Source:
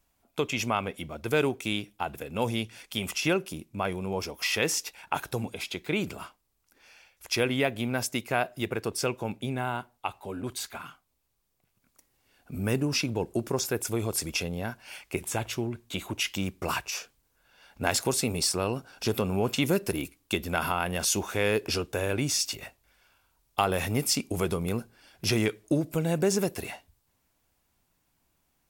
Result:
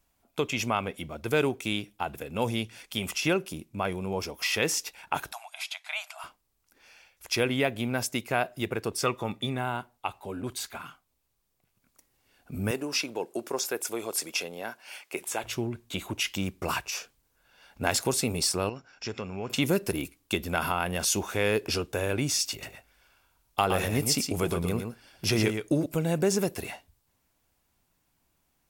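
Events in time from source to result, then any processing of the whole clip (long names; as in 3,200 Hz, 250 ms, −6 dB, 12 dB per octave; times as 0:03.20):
0:05.32–0:06.24: linear-phase brick-wall band-pass 610–13,000 Hz
0:09.03–0:09.57: hollow resonant body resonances 1,200/1,900/3,500 Hz, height 15 dB, ringing for 30 ms
0:12.71–0:15.44: high-pass filter 380 Hz
0:18.69–0:19.50: Chebyshev low-pass with heavy ripple 7,400 Hz, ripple 9 dB
0:22.51–0:25.86: single-tap delay 116 ms −6.5 dB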